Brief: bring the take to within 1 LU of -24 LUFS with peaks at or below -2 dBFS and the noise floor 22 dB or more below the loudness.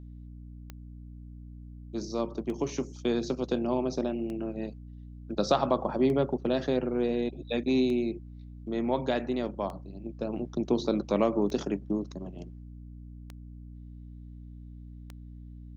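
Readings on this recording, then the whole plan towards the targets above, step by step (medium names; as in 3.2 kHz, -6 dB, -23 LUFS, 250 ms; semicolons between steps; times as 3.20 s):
clicks found 9; hum 60 Hz; highest harmonic 300 Hz; hum level -42 dBFS; loudness -30.0 LUFS; peak level -11.5 dBFS; loudness target -24.0 LUFS
-> de-click; hum notches 60/120/180/240/300 Hz; trim +6 dB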